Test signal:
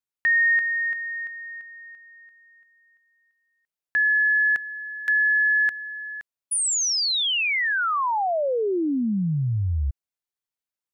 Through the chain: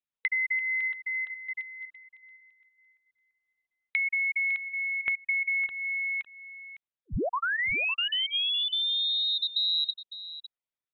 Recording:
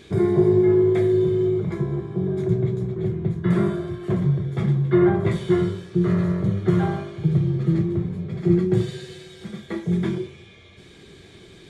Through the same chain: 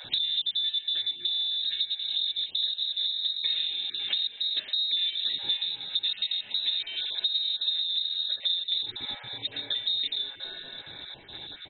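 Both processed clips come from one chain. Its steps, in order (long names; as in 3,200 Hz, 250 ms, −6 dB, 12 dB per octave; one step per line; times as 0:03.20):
time-frequency cells dropped at random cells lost 22%
noise gate with hold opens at −41 dBFS, hold 37 ms, range −7 dB
downward compressor 6 to 1, threshold −32 dBFS
single-tap delay 556 ms −14 dB
voice inversion scrambler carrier 3,900 Hz
level +4.5 dB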